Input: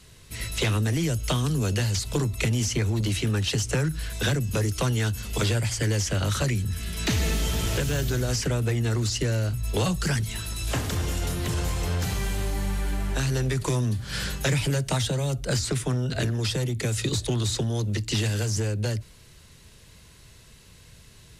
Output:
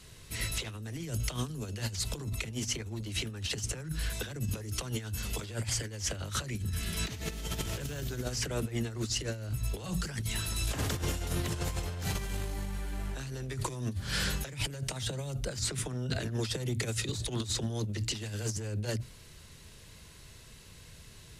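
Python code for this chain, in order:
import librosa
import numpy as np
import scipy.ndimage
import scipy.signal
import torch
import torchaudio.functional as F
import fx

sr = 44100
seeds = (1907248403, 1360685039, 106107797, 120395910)

y = fx.hum_notches(x, sr, base_hz=60, count=4)
y = fx.over_compress(y, sr, threshold_db=-29.0, ratio=-0.5)
y = y * 10.0 ** (-4.5 / 20.0)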